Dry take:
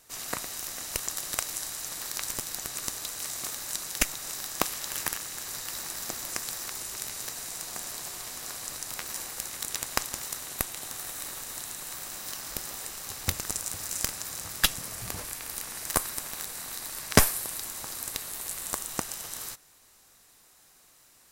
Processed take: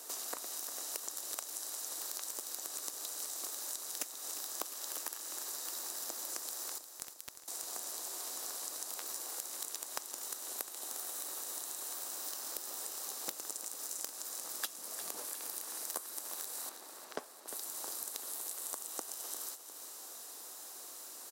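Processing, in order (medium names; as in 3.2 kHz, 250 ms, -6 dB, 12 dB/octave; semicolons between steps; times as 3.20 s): high-pass 300 Hz 24 dB/octave; peaking EQ 2.2 kHz -10 dB 1.2 oct; compression 4:1, threshold -53 dBFS, peak gain reduction 30 dB; 6.78–7.48 s: word length cut 6-bit, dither none; 16.69–17.48 s: tape spacing loss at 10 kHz 21 dB; feedback delay 353 ms, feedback 58%, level -11.5 dB; trim +11 dB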